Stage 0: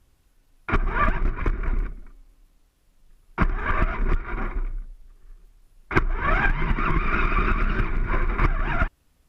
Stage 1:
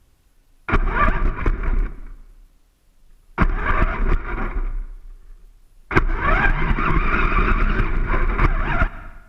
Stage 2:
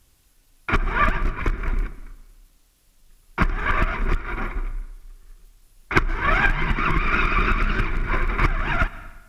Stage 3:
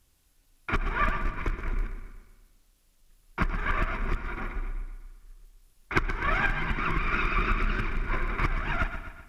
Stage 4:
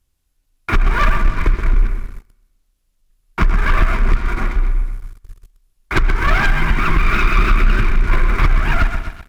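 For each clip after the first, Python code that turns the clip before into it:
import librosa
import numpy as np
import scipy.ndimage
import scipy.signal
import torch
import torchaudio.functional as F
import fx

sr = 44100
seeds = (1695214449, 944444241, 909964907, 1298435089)

y1 = fx.rev_plate(x, sr, seeds[0], rt60_s=1.1, hf_ratio=0.9, predelay_ms=110, drr_db=16.5)
y1 = F.gain(torch.from_numpy(y1), 4.0).numpy()
y2 = fx.high_shelf(y1, sr, hz=2500.0, db=10.5)
y2 = F.gain(torch.from_numpy(y2), -3.5).numpy()
y3 = fx.echo_feedback(y2, sr, ms=126, feedback_pct=52, wet_db=-10.5)
y3 = F.gain(torch.from_numpy(y3), -7.0).numpy()
y4 = fx.leveller(y3, sr, passes=3)
y4 = fx.low_shelf(y4, sr, hz=110.0, db=7.0)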